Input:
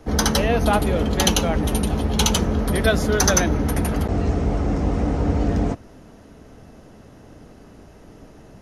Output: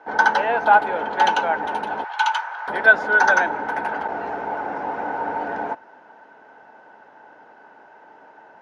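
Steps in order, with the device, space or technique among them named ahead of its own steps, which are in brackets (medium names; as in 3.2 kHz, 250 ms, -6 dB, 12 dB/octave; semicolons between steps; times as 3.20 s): tin-can telephone (band-pass 530–2400 Hz; small resonant body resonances 890/1500 Hz, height 18 dB, ringing for 35 ms); 2.04–2.68 s: high-pass 910 Hz 24 dB/octave; trim -1 dB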